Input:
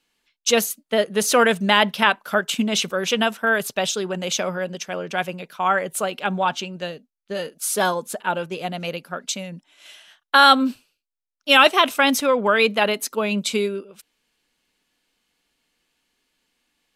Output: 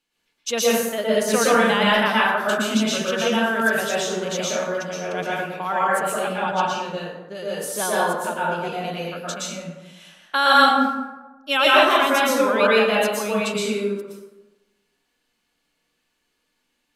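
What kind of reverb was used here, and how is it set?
plate-style reverb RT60 1.1 s, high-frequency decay 0.5×, pre-delay 0.105 s, DRR -7 dB; gain -7.5 dB

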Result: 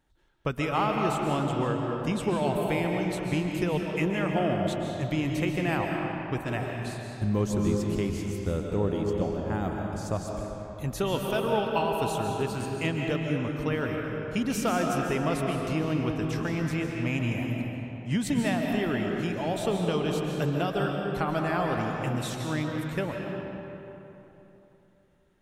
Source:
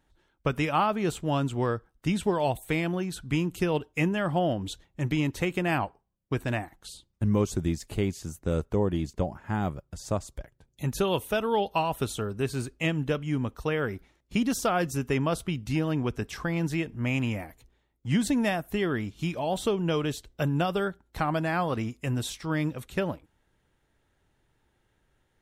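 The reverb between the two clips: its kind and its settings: digital reverb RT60 3.3 s, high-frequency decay 0.6×, pre-delay 0.1 s, DRR 0.5 dB; gain -2.5 dB

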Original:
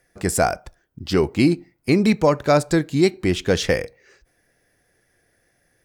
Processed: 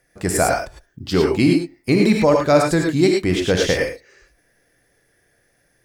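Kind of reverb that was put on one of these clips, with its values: non-linear reverb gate 0.13 s rising, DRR 0.5 dB

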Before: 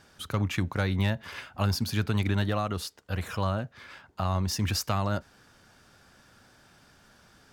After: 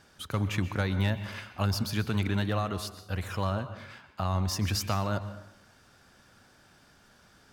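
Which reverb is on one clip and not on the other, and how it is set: plate-style reverb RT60 0.8 s, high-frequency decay 0.6×, pre-delay 0.11 s, DRR 11.5 dB; gain -1.5 dB

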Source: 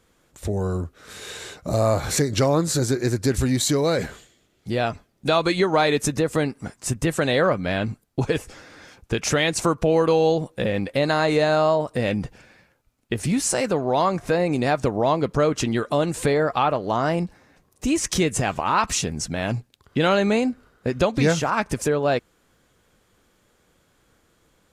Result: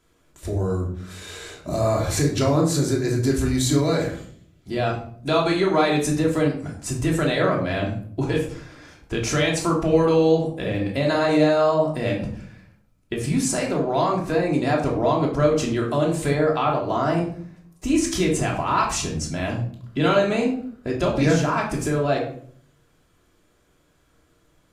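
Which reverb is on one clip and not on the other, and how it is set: shoebox room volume 740 m³, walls furnished, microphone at 3 m; gain -5 dB

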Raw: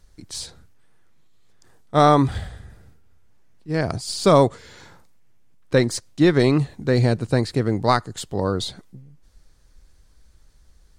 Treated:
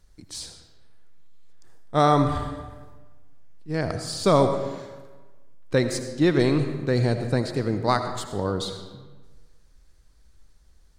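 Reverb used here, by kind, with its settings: digital reverb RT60 1.3 s, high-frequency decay 0.7×, pre-delay 40 ms, DRR 7.5 dB; gain -4 dB

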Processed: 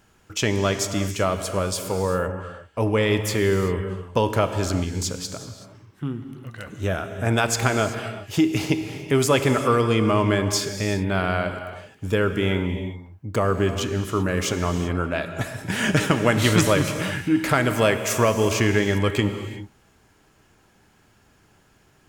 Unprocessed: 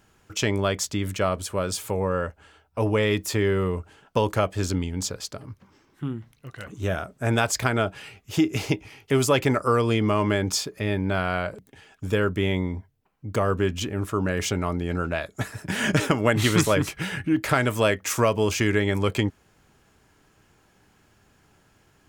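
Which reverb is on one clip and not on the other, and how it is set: non-linear reverb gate 0.41 s flat, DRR 7.5 dB; gain +1.5 dB

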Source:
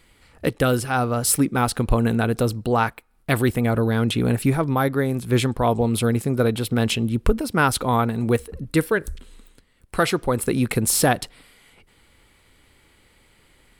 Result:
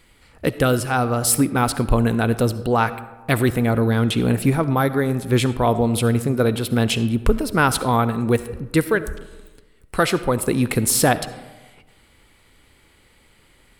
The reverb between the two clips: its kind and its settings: digital reverb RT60 1.2 s, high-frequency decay 0.45×, pre-delay 25 ms, DRR 13.5 dB; gain +1.5 dB

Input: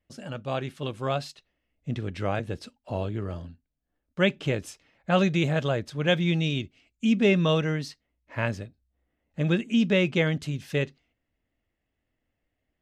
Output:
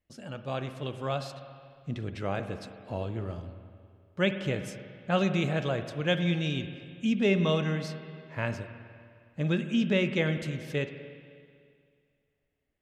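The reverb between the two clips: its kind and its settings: spring tank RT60 2.2 s, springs 46/51 ms, chirp 70 ms, DRR 8.5 dB; gain -4 dB

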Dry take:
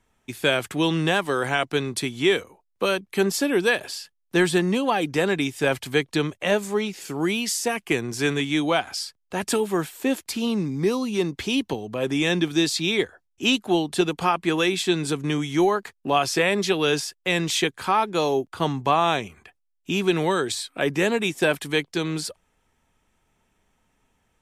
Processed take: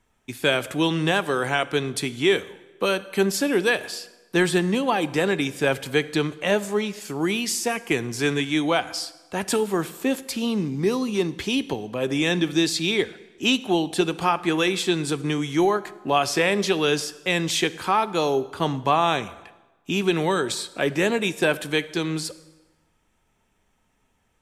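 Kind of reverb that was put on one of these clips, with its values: plate-style reverb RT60 1.2 s, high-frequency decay 0.8×, DRR 15 dB

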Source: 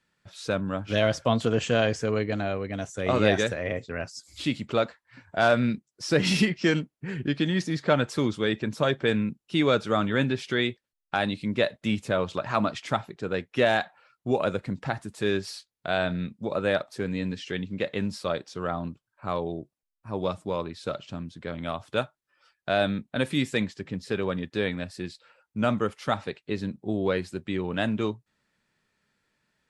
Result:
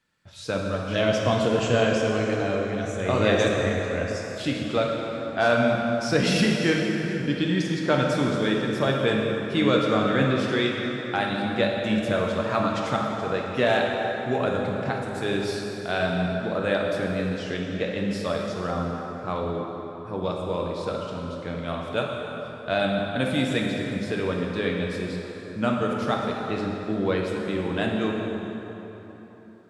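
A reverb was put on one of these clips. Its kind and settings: plate-style reverb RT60 3.8 s, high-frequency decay 0.65×, DRR -1 dB; gain -1 dB

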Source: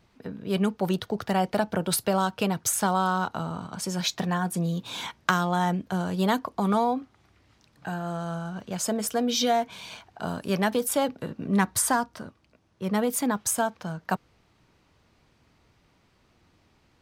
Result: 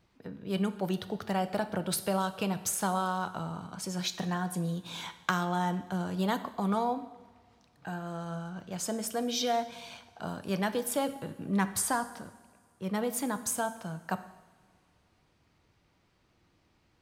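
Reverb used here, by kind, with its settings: two-slope reverb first 0.91 s, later 2.9 s, from -18 dB, DRR 10.5 dB; gain -6 dB

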